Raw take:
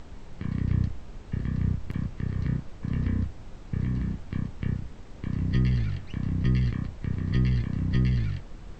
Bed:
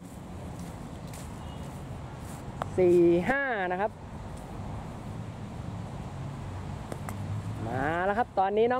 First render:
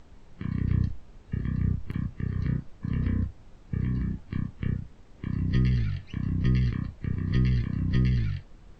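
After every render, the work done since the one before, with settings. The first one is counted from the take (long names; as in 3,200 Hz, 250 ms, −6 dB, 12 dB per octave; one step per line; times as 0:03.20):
noise reduction from a noise print 8 dB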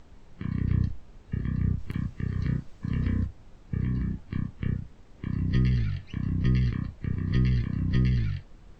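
0:01.78–0:03.26: high-shelf EQ 3,100 Hz +6 dB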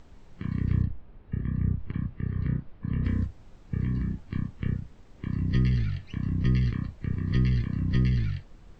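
0:00.82–0:03.05: high-frequency loss of the air 360 metres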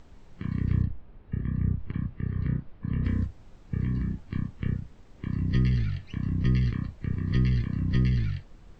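no processing that can be heard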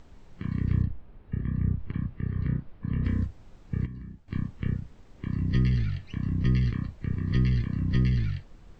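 0:03.86–0:04.28: clip gain −12 dB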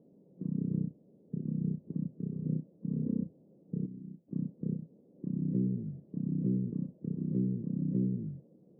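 Chebyshev band-pass filter 160–550 Hz, order 3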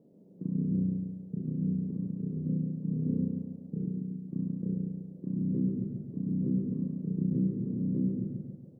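double-tracking delay 43 ms −6 dB
repeating echo 140 ms, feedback 50%, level −4 dB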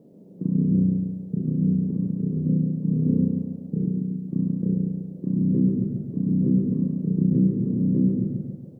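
level +9 dB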